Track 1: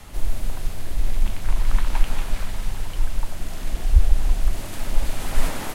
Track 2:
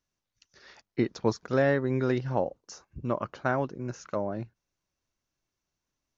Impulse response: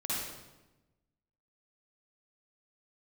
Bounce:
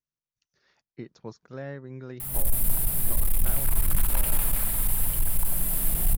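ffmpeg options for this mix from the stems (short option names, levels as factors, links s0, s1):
-filter_complex "[0:a]volume=5.01,asoftclip=hard,volume=0.2,acrusher=bits=8:mix=0:aa=0.000001,aexciter=amount=12.8:drive=6.5:freq=9000,adelay=2200,volume=0.631,asplit=2[s0][s1];[s1]volume=0.251[s2];[1:a]volume=0.188[s3];[2:a]atrim=start_sample=2205[s4];[s2][s4]afir=irnorm=-1:irlink=0[s5];[s0][s3][s5]amix=inputs=3:normalize=0,equalizer=f=150:t=o:w=0.53:g=7.5"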